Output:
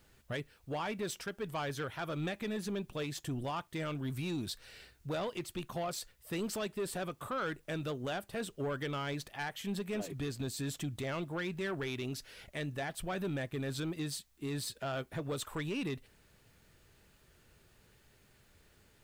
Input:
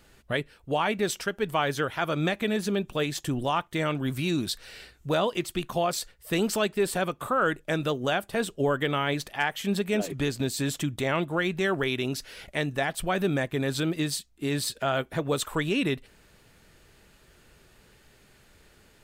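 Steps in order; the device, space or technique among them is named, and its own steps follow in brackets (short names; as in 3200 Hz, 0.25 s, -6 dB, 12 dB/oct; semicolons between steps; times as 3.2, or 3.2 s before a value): open-reel tape (soft clip -22 dBFS, distortion -14 dB; bell 99 Hz +5 dB 1.11 oct; white noise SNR 37 dB); gain -8.5 dB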